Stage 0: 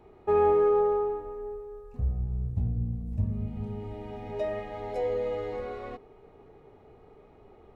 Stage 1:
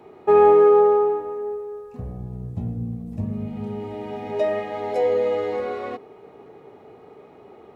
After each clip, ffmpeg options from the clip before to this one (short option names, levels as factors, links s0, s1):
-af "highpass=170,volume=2.82"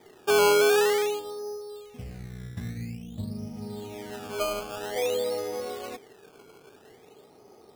-af "acrusher=samples=16:mix=1:aa=0.000001:lfo=1:lforange=16:lforate=0.5,volume=0.447"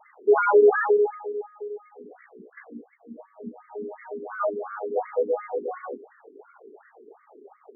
-af "afftfilt=real='re*between(b*sr/1024,300*pow(1600/300,0.5+0.5*sin(2*PI*2.8*pts/sr))/1.41,300*pow(1600/300,0.5+0.5*sin(2*PI*2.8*pts/sr))*1.41)':imag='im*between(b*sr/1024,300*pow(1600/300,0.5+0.5*sin(2*PI*2.8*pts/sr))/1.41,300*pow(1600/300,0.5+0.5*sin(2*PI*2.8*pts/sr))*1.41)':win_size=1024:overlap=0.75,volume=2.51"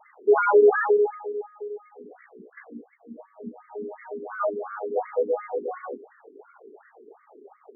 -af anull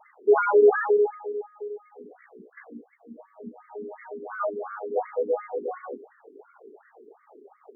-af "tremolo=f=3:d=0.3"